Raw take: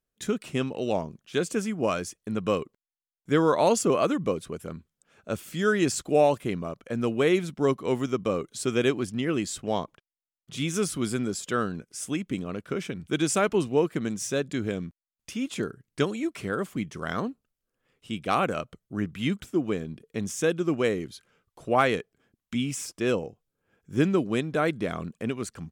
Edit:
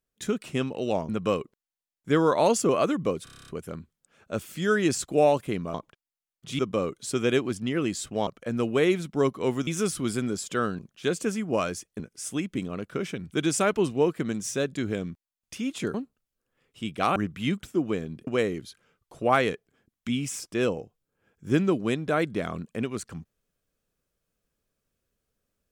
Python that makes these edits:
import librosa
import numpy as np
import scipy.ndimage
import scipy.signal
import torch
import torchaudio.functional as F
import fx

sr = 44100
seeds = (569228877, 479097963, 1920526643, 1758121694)

y = fx.edit(x, sr, fx.move(start_s=1.09, length_s=1.21, to_s=11.76),
    fx.stutter(start_s=4.45, slice_s=0.03, count=9),
    fx.swap(start_s=6.71, length_s=1.4, other_s=9.79, other_length_s=0.85),
    fx.cut(start_s=15.7, length_s=1.52),
    fx.cut(start_s=18.44, length_s=0.51),
    fx.cut(start_s=20.06, length_s=0.67), tone=tone)